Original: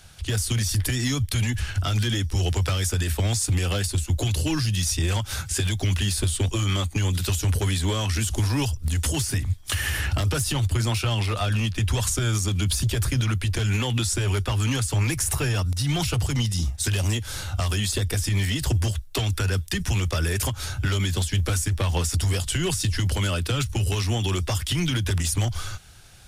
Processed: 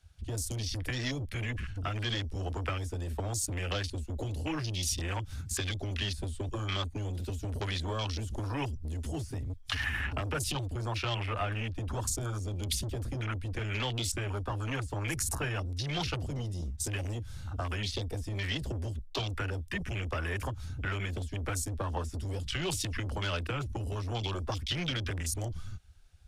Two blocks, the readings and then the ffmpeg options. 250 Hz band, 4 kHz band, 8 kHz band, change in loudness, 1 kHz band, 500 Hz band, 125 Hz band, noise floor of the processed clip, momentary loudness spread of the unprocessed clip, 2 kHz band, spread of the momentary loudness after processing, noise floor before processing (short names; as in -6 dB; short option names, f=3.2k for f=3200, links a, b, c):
-10.0 dB, -8.5 dB, -11.0 dB, -10.0 dB, -5.0 dB, -6.5 dB, -11.5 dB, -45 dBFS, 2 LU, -6.5 dB, 5 LU, -37 dBFS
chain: -filter_complex "[0:a]afwtdn=0.0251,highshelf=f=8.9k:g=-6,acrossover=split=520|4800[a][b][c];[a]asoftclip=type=tanh:threshold=-30dB[d];[d][b][c]amix=inputs=3:normalize=0,volume=-3.5dB"